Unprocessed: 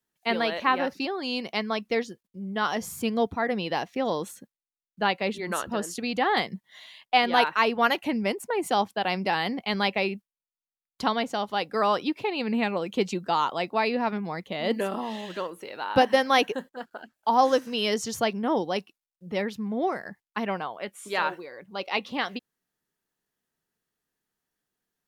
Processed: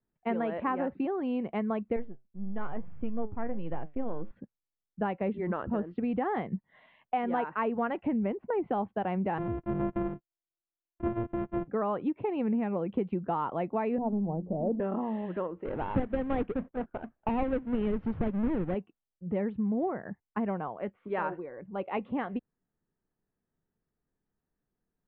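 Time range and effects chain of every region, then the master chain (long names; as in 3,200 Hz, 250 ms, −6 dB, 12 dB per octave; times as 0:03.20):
0:01.96–0:04.31: gain on one half-wave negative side −7 dB + flanger 1.1 Hz, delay 5.6 ms, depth 4.1 ms, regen +80%
0:09.38–0:11.68: samples sorted by size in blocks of 128 samples + de-essing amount 95% + expander for the loud parts, over −46 dBFS
0:13.98–0:14.80: mu-law and A-law mismatch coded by mu + Butterworth low-pass 850 Hz + mains-hum notches 60/120/180/240/300/360 Hz
0:15.65–0:18.75: each half-wave held at its own peak + dynamic equaliser 870 Hz, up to −7 dB, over −30 dBFS, Q 0.76
whole clip: Bessel low-pass filter 1,600 Hz, order 8; spectral tilt −3 dB per octave; downward compressor 5 to 1, threshold −24 dBFS; level −2.5 dB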